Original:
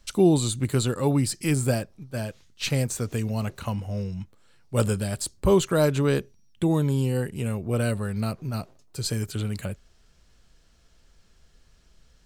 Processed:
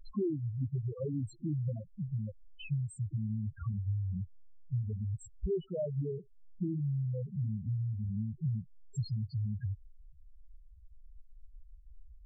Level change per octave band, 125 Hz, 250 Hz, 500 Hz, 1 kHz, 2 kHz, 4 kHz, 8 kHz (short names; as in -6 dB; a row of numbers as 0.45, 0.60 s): -7.0 dB, -13.0 dB, -15.0 dB, under -25 dB, under -20 dB, under -20 dB, under -25 dB